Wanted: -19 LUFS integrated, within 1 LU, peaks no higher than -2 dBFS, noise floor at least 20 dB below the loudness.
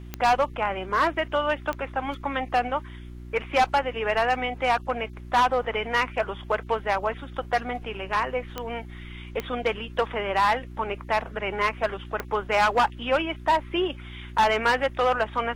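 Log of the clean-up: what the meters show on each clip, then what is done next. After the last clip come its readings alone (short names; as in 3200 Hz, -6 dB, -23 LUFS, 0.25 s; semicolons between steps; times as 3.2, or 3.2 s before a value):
clicks 5; hum 60 Hz; harmonics up to 360 Hz; hum level -38 dBFS; loudness -26.0 LUFS; peak -12.0 dBFS; loudness target -19.0 LUFS
-> de-click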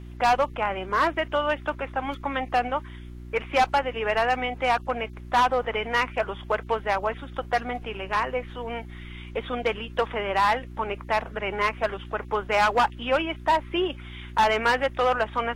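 clicks 0; hum 60 Hz; harmonics up to 360 Hz; hum level -38 dBFS
-> de-hum 60 Hz, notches 6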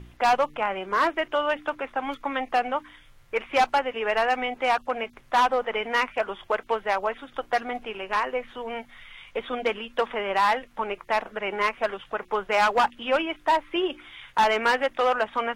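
hum none; loudness -26.0 LUFS; peak -12.5 dBFS; loudness target -19.0 LUFS
-> gain +7 dB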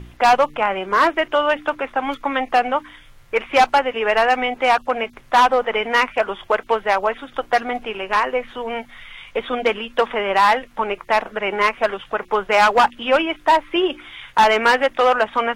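loudness -19.0 LUFS; peak -5.5 dBFS; noise floor -47 dBFS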